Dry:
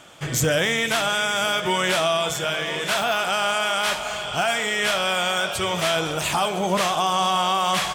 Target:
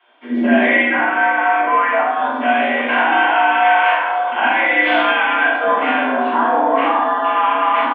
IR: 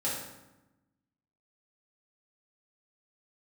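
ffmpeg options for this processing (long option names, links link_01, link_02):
-filter_complex "[0:a]afwtdn=0.0562,bandreject=frequency=550:width=12,highpass=frequency=160:width_type=q:width=0.5412,highpass=frequency=160:width_type=q:width=1.307,lowpass=frequency=3000:width_type=q:width=0.5176,lowpass=frequency=3000:width_type=q:width=0.7071,lowpass=frequency=3000:width_type=q:width=1.932,afreqshift=94,alimiter=limit=-18.5dB:level=0:latency=1:release=19,asettb=1/sr,asplit=3[link_01][link_02][link_03];[link_01]atrim=end=0.894[link_04];[link_02]atrim=start=0.89:end=2.11,asetpts=PTS-STARTPTS,afade=type=in:duration=0.004:curve=qsin,afade=type=out:start_time=1.216:duration=0.004:curve=qsin,acrossover=split=350 2200:gain=0.178 1 0.158[link_05][link_06][link_07];[link_05][link_06][link_07]amix=inputs=3:normalize=0[link_08];[link_03]atrim=start=2.106[link_09];[link_04][link_08]acrossfade=duration=0.004:curve1=hsin:curve2=qsin[link_10];[link_10][link_09]acrossfade=duration=0.004:curve1=qsin:curve2=hsin,acrossover=split=380[link_11][link_12];[link_11]adelay=70[link_13];[link_13][link_12]amix=inputs=2:normalize=0[link_14];[1:a]atrim=start_sample=2205,afade=type=out:start_time=0.42:duration=0.01,atrim=end_sample=18963,asetrate=52920,aresample=44100[link_15];[link_14][link_15]afir=irnorm=-1:irlink=0,volume=7.5dB"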